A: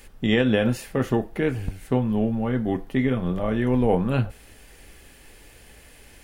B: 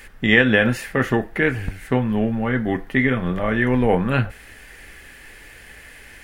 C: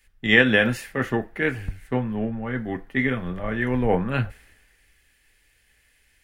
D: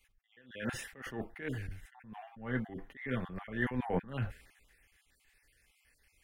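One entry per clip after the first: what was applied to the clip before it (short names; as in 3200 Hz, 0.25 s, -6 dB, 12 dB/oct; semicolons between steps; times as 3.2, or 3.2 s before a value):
bell 1800 Hz +12 dB 1 oct; gain +2 dB
three-band expander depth 70%; gain -5 dB
random spectral dropouts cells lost 28%; attack slew limiter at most 120 dB/s; gain -5.5 dB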